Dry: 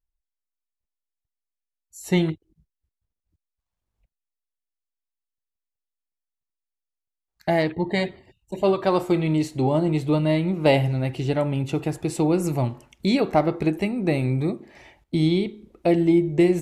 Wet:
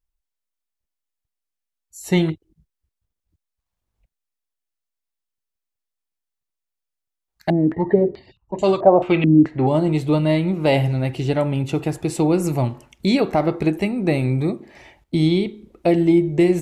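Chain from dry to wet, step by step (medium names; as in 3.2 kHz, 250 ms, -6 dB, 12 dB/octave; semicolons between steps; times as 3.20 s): loudness maximiser +9 dB; 7.50–9.67 s: step-sequenced low-pass 4.6 Hz 270–6900 Hz; trim -6 dB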